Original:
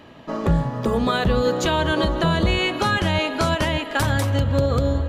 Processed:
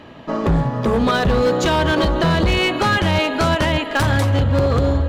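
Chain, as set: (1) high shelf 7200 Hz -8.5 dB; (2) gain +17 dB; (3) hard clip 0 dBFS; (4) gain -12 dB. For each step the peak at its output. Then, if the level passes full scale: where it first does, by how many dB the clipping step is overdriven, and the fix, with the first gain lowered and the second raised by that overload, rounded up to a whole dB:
-10.0, +7.0, 0.0, -12.0 dBFS; step 2, 7.0 dB; step 2 +10 dB, step 4 -5 dB

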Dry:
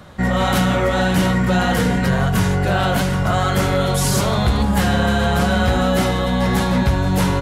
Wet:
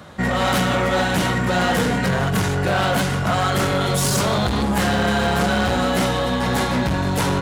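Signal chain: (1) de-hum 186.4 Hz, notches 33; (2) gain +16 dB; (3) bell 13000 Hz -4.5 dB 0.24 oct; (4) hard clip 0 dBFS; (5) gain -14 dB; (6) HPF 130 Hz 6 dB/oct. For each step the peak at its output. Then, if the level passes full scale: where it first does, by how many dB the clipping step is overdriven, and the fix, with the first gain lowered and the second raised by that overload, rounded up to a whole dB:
-6.5, +9.5, +9.5, 0.0, -14.0, -9.0 dBFS; step 2, 9.5 dB; step 2 +6 dB, step 5 -4 dB

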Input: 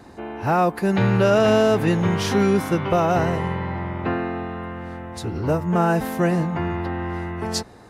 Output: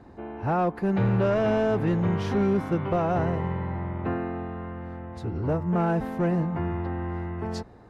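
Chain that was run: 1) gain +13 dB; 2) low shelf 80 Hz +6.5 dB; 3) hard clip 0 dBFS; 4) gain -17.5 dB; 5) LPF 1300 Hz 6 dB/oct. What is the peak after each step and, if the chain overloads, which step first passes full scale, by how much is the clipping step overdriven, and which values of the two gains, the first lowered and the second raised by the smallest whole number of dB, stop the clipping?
+7.0, +7.5, 0.0, -17.5, -17.5 dBFS; step 1, 7.5 dB; step 1 +5 dB, step 4 -9.5 dB

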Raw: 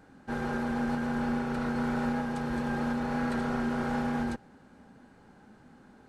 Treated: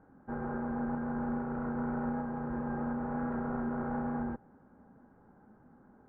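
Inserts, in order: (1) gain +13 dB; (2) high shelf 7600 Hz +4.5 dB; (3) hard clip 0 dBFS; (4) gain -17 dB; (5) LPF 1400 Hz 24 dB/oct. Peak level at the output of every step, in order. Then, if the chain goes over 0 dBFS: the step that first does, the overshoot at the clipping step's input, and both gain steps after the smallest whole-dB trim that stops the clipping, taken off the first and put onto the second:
-6.0, -6.0, -6.0, -23.0, -23.5 dBFS; no overload

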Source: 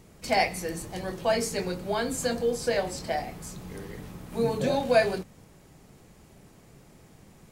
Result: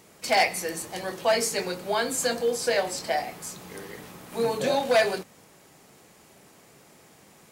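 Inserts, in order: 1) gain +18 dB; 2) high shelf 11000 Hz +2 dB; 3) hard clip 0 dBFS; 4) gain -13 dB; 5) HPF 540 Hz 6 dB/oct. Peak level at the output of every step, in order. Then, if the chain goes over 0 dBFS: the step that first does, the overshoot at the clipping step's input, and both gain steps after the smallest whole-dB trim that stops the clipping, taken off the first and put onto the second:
+8.0, +8.0, 0.0, -13.0, -9.5 dBFS; step 1, 8.0 dB; step 1 +10 dB, step 4 -5 dB

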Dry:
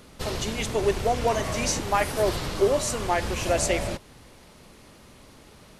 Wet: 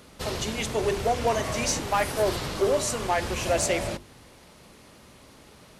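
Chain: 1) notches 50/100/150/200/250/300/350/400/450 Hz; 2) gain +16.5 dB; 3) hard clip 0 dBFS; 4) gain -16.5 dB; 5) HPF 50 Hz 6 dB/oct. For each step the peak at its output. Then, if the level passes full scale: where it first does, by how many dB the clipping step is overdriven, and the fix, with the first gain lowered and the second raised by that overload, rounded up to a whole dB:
-10.5, +6.0, 0.0, -16.5, -14.5 dBFS; step 2, 6.0 dB; step 2 +10.5 dB, step 4 -10.5 dB

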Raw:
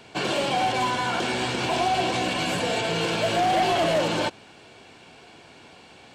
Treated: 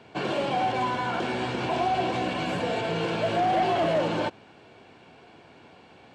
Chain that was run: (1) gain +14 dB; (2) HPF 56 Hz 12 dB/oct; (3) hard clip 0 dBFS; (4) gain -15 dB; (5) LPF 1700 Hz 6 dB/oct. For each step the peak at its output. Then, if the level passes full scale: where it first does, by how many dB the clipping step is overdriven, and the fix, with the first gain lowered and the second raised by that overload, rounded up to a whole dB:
-3.5, -1.5, -1.5, -16.5, -17.0 dBFS; no overload

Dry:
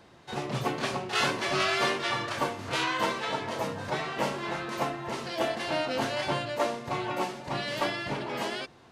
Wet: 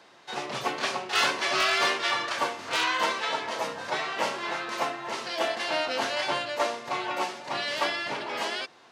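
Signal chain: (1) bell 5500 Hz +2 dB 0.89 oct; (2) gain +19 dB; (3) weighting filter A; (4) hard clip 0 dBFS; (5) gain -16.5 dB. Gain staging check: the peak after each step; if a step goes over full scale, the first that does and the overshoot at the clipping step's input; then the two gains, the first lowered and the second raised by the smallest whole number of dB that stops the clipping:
-12.5, +6.5, +6.0, 0.0, -16.5 dBFS; step 2, 6.0 dB; step 2 +13 dB, step 5 -10.5 dB

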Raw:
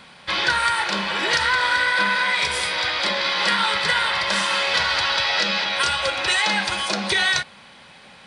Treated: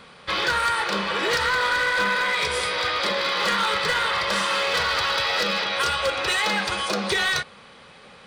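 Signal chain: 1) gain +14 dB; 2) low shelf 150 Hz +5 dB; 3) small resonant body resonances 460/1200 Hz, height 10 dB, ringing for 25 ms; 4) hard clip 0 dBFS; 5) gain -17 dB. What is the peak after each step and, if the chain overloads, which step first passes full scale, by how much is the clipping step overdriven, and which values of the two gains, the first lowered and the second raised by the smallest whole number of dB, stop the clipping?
+8.5, +8.5, +10.0, 0.0, -17.0 dBFS; step 1, 10.0 dB; step 1 +4 dB, step 5 -7 dB

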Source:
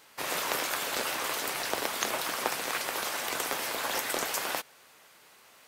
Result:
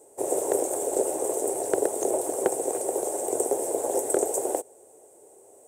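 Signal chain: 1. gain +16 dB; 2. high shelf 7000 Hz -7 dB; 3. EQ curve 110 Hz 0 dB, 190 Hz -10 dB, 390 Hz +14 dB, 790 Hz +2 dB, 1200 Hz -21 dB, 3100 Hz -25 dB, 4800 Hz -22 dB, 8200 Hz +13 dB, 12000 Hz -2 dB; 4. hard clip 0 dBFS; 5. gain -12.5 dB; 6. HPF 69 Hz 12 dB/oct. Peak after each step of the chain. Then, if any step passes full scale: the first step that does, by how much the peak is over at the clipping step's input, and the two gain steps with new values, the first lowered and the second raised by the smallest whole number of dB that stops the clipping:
+5.5, +5.0, +7.5, 0.0, -12.5, -11.0 dBFS; step 1, 7.5 dB; step 1 +8 dB, step 5 -4.5 dB

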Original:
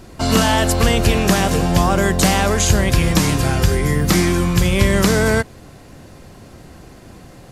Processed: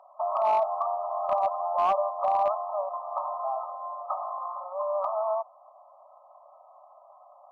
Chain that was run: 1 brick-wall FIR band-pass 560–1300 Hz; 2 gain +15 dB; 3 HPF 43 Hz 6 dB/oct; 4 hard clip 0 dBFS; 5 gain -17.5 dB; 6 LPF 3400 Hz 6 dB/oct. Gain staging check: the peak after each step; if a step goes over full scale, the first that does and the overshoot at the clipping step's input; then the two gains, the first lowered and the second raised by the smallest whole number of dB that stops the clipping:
-10.0, +5.0, +5.0, 0.0, -17.5, -17.5 dBFS; step 2, 5.0 dB; step 2 +10 dB, step 5 -12.5 dB

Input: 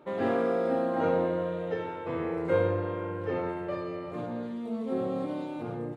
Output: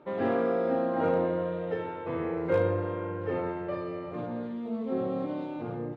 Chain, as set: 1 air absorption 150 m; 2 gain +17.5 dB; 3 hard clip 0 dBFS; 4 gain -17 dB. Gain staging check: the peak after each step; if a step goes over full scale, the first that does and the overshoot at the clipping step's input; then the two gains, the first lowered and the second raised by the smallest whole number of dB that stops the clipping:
-14.0, +3.5, 0.0, -17.0 dBFS; step 2, 3.5 dB; step 2 +13.5 dB, step 4 -13 dB

